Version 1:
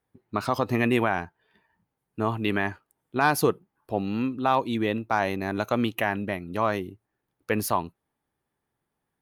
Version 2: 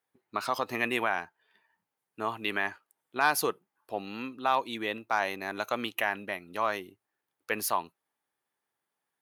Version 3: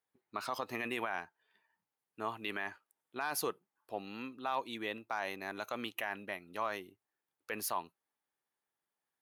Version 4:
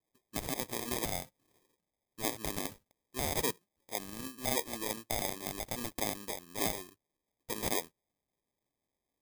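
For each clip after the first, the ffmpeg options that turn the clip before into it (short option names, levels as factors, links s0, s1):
-af "highpass=f=1000:p=1"
-af "alimiter=limit=0.126:level=0:latency=1:release=14,volume=0.501"
-af "acrusher=samples=31:mix=1:aa=0.000001,crystalizer=i=3:c=0"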